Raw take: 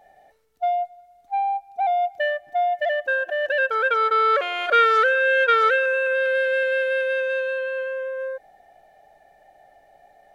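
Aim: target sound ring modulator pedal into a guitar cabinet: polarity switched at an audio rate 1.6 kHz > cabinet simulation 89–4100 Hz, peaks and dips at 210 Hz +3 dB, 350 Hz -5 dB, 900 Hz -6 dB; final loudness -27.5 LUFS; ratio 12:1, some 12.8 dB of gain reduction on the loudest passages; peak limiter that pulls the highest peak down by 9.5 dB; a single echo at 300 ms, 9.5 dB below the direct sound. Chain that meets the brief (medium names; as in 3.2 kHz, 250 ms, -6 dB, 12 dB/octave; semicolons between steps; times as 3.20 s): compression 12:1, threshold -26 dBFS; peak limiter -27.5 dBFS; delay 300 ms -9.5 dB; polarity switched at an audio rate 1.6 kHz; cabinet simulation 89–4100 Hz, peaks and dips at 210 Hz +3 dB, 350 Hz -5 dB, 900 Hz -6 dB; trim +6 dB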